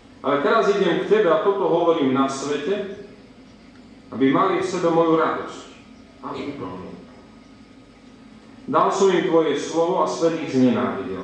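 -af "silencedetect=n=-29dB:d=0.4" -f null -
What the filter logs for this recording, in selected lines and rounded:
silence_start: 3.01
silence_end: 4.12 | silence_duration: 1.11
silence_start: 5.61
silence_end: 6.24 | silence_duration: 0.63
silence_start: 6.94
silence_end: 8.68 | silence_duration: 1.74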